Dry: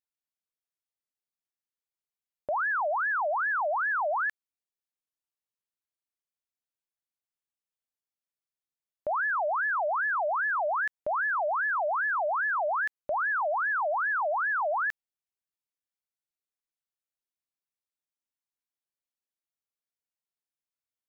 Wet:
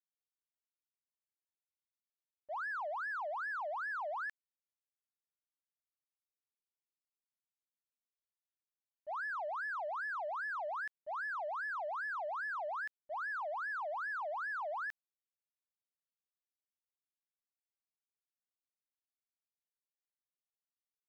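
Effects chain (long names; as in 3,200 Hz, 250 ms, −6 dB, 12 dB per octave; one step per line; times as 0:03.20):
in parallel at −9 dB: soft clipping −34 dBFS, distortion −12 dB
on the sum: downward expander −18 dBFS
level +1 dB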